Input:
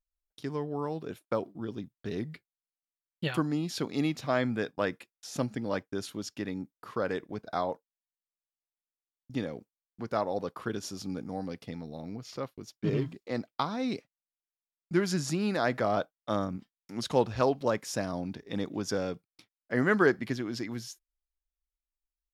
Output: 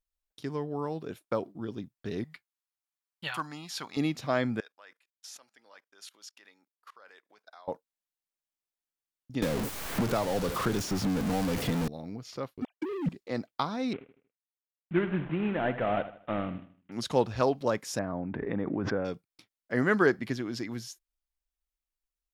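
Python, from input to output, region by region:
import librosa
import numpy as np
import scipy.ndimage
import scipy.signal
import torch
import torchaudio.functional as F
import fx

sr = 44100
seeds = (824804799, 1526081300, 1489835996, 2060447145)

y = fx.chain(x, sr, fx.low_shelf_res(hz=620.0, db=-12.0, q=1.5),
    fx.clip_hard(threshold_db=-22.0), at=(2.24, 3.97))
y = fx.chain(y, sr, fx.level_steps(step_db=23),
    fx.highpass(hz=1000.0, slope=12), at=(4.6, 7.68))
y = fx.chain(y, sr, fx.zero_step(step_db=-30.5),
    fx.low_shelf(hz=120.0, db=8.0),
    fx.band_squash(depth_pct=100), at=(9.42, 11.88))
y = fx.chain(y, sr, fx.sine_speech(),
    fx.leveller(passes=3),
    fx.over_compress(threshold_db=-29.0, ratio=-0.5), at=(12.62, 13.09))
y = fx.chain(y, sr, fx.cvsd(bps=16000),
    fx.echo_feedback(ms=78, feedback_pct=37, wet_db=-13.0), at=(13.93, 16.92))
y = fx.chain(y, sr, fx.lowpass(hz=2000.0, slope=24),
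    fx.pre_swell(db_per_s=23.0), at=(17.99, 19.05))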